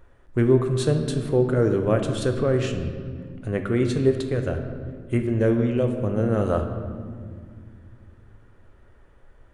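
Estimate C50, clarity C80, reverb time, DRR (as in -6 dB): 7.0 dB, 8.5 dB, 2.0 s, 5.0 dB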